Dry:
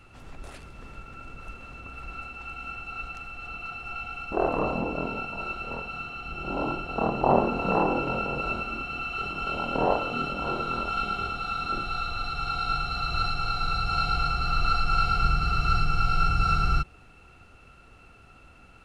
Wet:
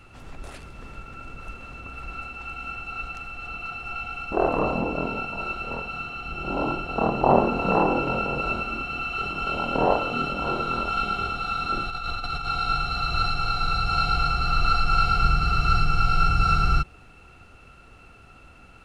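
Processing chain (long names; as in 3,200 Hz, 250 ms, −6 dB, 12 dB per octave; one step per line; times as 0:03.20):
0:11.90–0:12.45: compressor whose output falls as the input rises −32 dBFS, ratio −0.5
level +3 dB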